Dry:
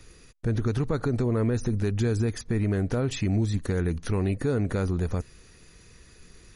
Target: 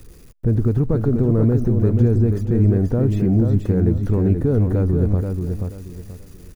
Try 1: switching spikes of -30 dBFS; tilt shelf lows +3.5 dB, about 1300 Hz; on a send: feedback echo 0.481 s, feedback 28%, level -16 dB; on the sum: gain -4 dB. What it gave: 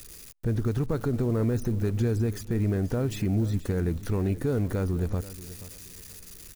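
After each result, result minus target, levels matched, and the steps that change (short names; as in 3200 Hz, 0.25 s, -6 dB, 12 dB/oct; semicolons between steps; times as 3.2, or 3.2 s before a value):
echo-to-direct -10.5 dB; 1000 Hz band +6.0 dB
change: feedback echo 0.481 s, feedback 28%, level -5.5 dB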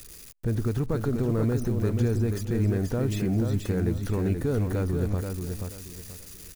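1000 Hz band +6.5 dB
change: tilt shelf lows +13 dB, about 1300 Hz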